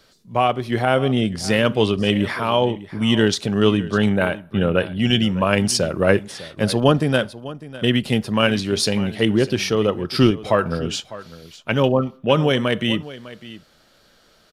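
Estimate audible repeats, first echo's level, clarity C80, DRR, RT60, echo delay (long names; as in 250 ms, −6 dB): 1, −17.0 dB, no reverb audible, no reverb audible, no reverb audible, 602 ms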